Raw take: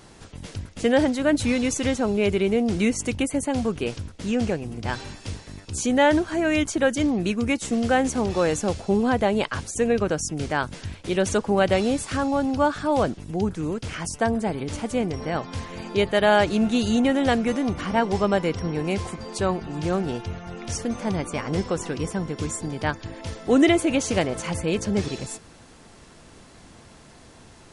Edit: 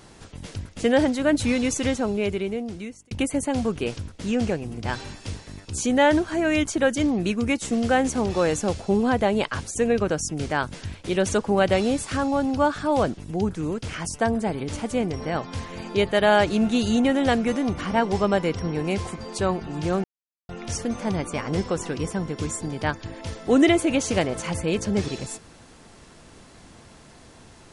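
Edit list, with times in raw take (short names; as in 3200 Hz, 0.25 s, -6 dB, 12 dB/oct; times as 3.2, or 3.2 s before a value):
1.85–3.11 fade out
20.04–20.49 mute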